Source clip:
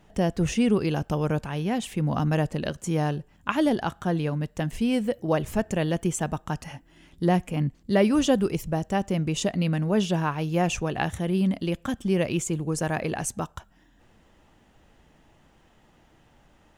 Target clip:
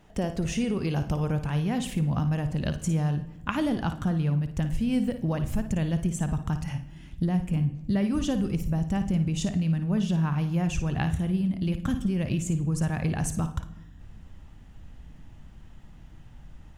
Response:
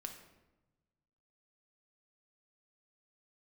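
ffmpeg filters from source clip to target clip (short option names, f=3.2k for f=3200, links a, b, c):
-filter_complex "[0:a]asubboost=boost=6:cutoff=170,acompressor=threshold=-24dB:ratio=6,asplit=2[a][b];[1:a]atrim=start_sample=2205,adelay=55[c];[b][c]afir=irnorm=-1:irlink=0,volume=-5.5dB[d];[a][d]amix=inputs=2:normalize=0"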